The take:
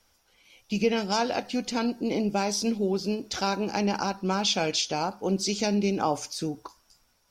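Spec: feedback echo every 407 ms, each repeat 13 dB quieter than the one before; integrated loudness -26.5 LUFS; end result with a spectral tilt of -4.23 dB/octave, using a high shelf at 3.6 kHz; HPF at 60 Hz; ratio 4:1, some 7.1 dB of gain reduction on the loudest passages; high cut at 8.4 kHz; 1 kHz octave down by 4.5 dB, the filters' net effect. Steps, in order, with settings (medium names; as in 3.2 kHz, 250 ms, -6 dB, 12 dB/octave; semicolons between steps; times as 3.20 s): high-pass 60 Hz; low-pass 8.4 kHz; peaking EQ 1 kHz -6 dB; treble shelf 3.6 kHz -3 dB; compression 4:1, threshold -28 dBFS; feedback delay 407 ms, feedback 22%, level -13 dB; trim +6 dB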